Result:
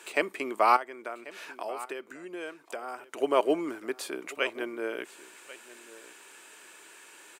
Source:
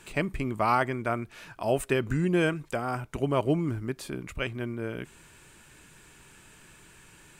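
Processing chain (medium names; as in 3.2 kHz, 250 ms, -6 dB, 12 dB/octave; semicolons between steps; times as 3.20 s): 0.76–3.17 s: compression 5:1, threshold -38 dBFS, peak gain reduction 16 dB; high-pass 350 Hz 24 dB/octave; delay 1089 ms -18.5 dB; trim +3.5 dB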